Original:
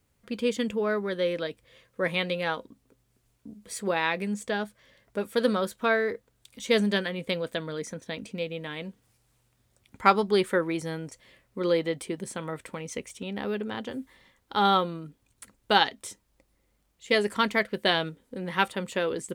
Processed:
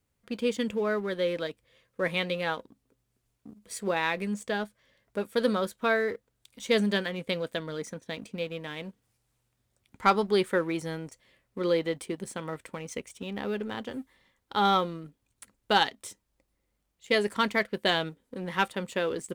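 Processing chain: sample leveller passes 1; gain -5 dB

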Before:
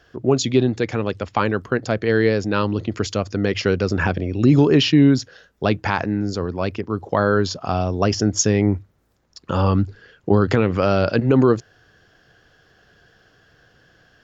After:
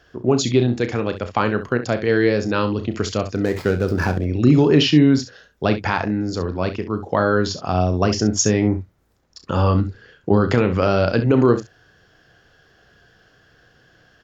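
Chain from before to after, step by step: 3.35–4.25 median filter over 15 samples; early reflections 33 ms -10.5 dB, 66 ms -12 dB

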